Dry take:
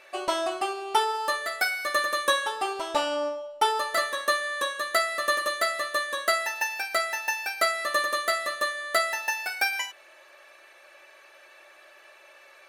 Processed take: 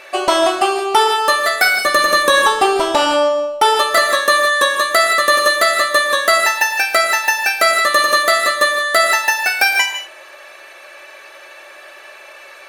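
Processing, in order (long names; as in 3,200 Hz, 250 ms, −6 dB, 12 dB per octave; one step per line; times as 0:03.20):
0:01.64–0:02.92: low-shelf EQ 310 Hz +9.5 dB
reverb whose tail is shaped and stops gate 190 ms rising, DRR 8 dB
boost into a limiter +14.5 dB
level −1 dB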